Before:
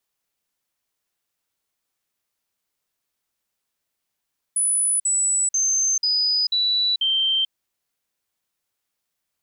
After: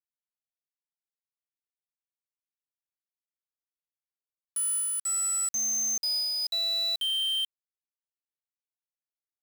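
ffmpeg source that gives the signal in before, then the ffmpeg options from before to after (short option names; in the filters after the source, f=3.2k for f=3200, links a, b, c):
-f lavfi -i "aevalsrc='0.133*clip(min(mod(t,0.49),0.44-mod(t,0.49))/0.005,0,1)*sin(2*PI*9950*pow(2,-floor(t/0.49)/3)*mod(t,0.49))':d=2.94:s=44100"
-af "acrusher=bits=4:mix=0:aa=0.000001,tremolo=f=0.71:d=0.69,alimiter=level_in=1.5dB:limit=-24dB:level=0:latency=1,volume=-1.5dB"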